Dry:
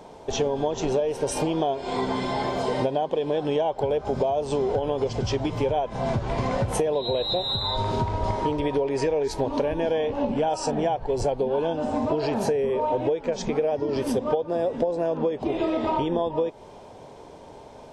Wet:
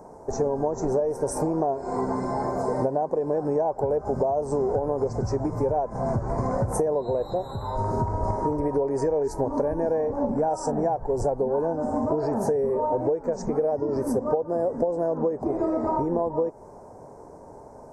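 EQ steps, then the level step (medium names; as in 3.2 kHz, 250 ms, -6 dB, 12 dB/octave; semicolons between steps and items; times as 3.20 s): Butterworth band-stop 3.1 kHz, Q 0.56; 0.0 dB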